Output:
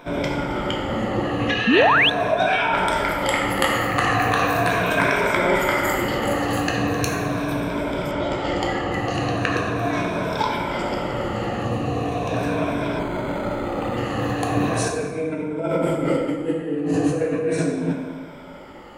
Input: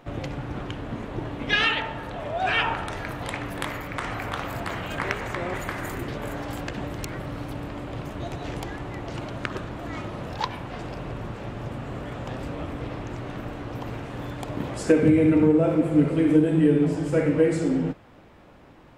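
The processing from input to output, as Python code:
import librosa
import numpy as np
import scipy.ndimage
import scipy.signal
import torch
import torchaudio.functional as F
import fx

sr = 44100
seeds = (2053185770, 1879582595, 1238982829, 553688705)

y = fx.spec_ripple(x, sr, per_octave=1.6, drift_hz=-0.39, depth_db=12)
y = fx.peak_eq(y, sr, hz=1600.0, db=-10.5, octaves=0.53, at=(11.65, 12.34))
y = fx.over_compress(y, sr, threshold_db=-26.0, ratio=-1.0)
y = fx.low_shelf(y, sr, hz=160.0, db=-9.0)
y = fx.rev_plate(y, sr, seeds[0], rt60_s=1.5, hf_ratio=0.6, predelay_ms=0, drr_db=-0.5)
y = fx.spec_paint(y, sr, seeds[1], shape='rise', start_s=1.67, length_s=0.43, low_hz=200.0, high_hz=3700.0, level_db=-20.0)
y = fx.lowpass(y, sr, hz=6000.0, slope=12, at=(8.11, 8.92))
y = fx.resample_linear(y, sr, factor=8, at=(12.99, 13.97))
y = F.gain(torch.from_numpy(y), 4.0).numpy()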